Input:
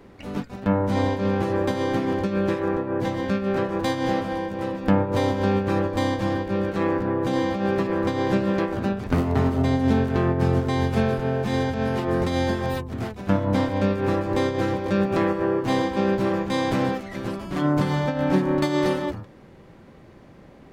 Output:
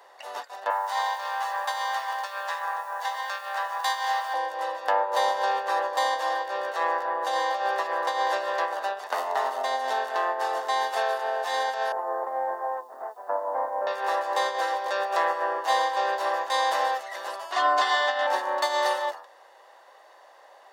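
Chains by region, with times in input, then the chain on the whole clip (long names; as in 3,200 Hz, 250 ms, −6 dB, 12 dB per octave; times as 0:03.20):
0:00.70–0:04.34: high-pass filter 770 Hz 24 dB per octave + bit-depth reduction 10 bits, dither triangular
0:11.92–0:13.87: Bessel low-pass filter 930 Hz, order 6 + bit-depth reduction 12 bits, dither triangular
0:17.52–0:18.27: low-pass filter 4,700 Hz + high-shelf EQ 3,100 Hz +9.5 dB + comb filter 2.8 ms, depth 91%
whole clip: Butterworth high-pass 540 Hz 36 dB per octave; parametric band 2,400 Hz −9 dB 0.43 octaves; comb filter 1.1 ms, depth 39%; level +3.5 dB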